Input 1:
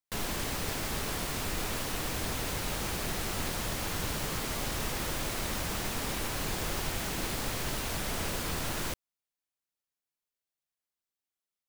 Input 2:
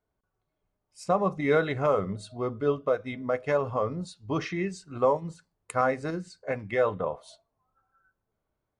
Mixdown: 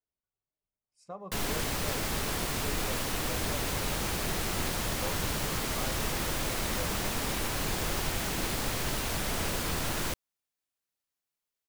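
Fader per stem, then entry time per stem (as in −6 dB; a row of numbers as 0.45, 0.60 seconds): +2.0, −18.0 decibels; 1.20, 0.00 seconds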